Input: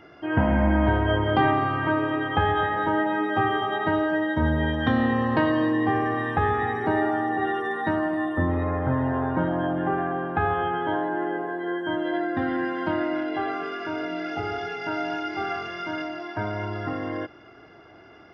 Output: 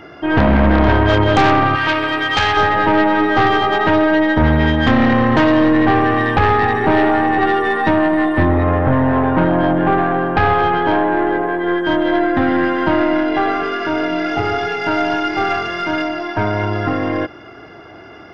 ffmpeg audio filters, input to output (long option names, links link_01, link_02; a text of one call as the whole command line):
ffmpeg -i in.wav -filter_complex "[0:a]aeval=exprs='0.355*(cos(1*acos(clip(val(0)/0.355,-1,1)))-cos(1*PI/2))+0.0891*(cos(5*acos(clip(val(0)/0.355,-1,1)))-cos(5*PI/2))+0.0501*(cos(6*acos(clip(val(0)/0.355,-1,1)))-cos(6*PI/2))':channel_layout=same,asettb=1/sr,asplit=3[link_01][link_02][link_03];[link_01]atrim=end=1.754[link_04];[link_02]atrim=start=1.75:end=2.57,asetpts=PTS-STARTPTS,afade=type=in:duration=0.004:curve=qsin,afade=type=out:start_time=0.816:duration=0.004:curve=qsin,tiltshelf=frequency=1400:gain=-8.5[link_05];[link_03]atrim=start=2.566[link_06];[link_04][link_05]acrossfade=duration=0.004:curve1=hsin:curve2=qsin[link_07];[link_07][link_06]acrossfade=duration=0.004:curve1=qsin:curve2=hsin,volume=4.5dB" out.wav